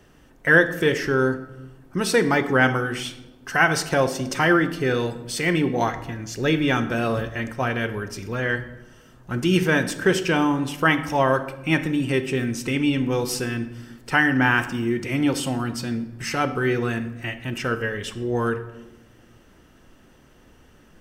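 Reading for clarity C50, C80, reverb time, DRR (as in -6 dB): 12.0 dB, 14.5 dB, 1.1 s, 10.5 dB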